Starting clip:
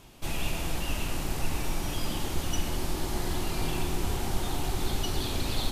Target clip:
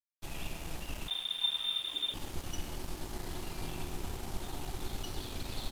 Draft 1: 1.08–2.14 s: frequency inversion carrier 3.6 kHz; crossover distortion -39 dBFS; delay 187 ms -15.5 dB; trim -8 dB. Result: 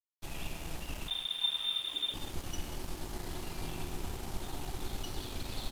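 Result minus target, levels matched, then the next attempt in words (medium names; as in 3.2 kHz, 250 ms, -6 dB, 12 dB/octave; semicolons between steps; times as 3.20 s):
echo-to-direct +11 dB
1.08–2.14 s: frequency inversion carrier 3.6 kHz; crossover distortion -39 dBFS; delay 187 ms -26.5 dB; trim -8 dB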